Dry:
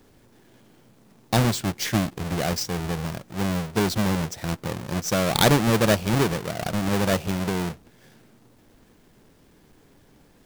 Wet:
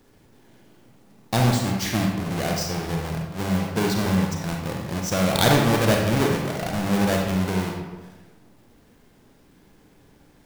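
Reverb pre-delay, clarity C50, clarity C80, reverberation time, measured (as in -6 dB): 33 ms, 2.0 dB, 5.0 dB, 1.2 s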